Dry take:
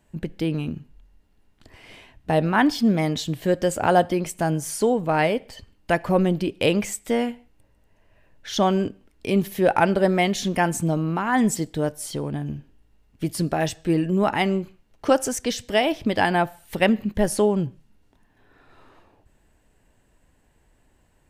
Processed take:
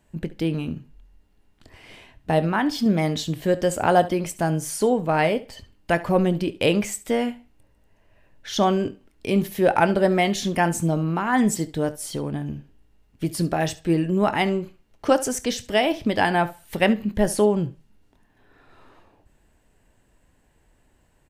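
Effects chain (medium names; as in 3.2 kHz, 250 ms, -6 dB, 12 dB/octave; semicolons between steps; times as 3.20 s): 2.38–2.86 s: compression, threshold -18 dBFS, peak gain reduction 5.5 dB; early reflections 24 ms -15.5 dB, 70 ms -18 dB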